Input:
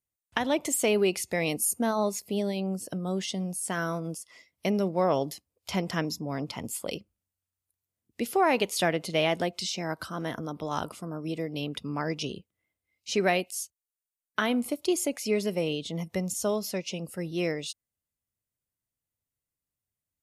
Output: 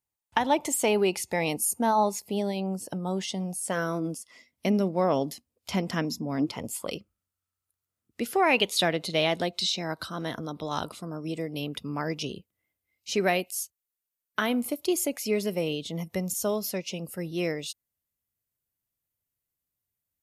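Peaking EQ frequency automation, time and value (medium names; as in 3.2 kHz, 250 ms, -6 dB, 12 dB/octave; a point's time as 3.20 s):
peaking EQ +11 dB 0.28 oct
3.45 s 870 Hz
4.20 s 240 Hz
6.36 s 240 Hz
6.91 s 1.3 kHz
8.21 s 1.3 kHz
8.73 s 3.9 kHz
10.99 s 3.9 kHz
11.65 s 13 kHz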